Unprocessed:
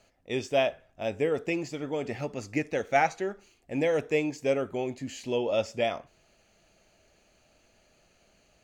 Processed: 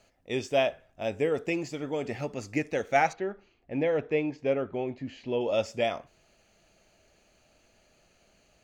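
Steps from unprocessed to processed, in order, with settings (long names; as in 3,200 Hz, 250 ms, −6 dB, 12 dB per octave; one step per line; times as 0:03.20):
0:03.13–0:05.41: high-frequency loss of the air 250 metres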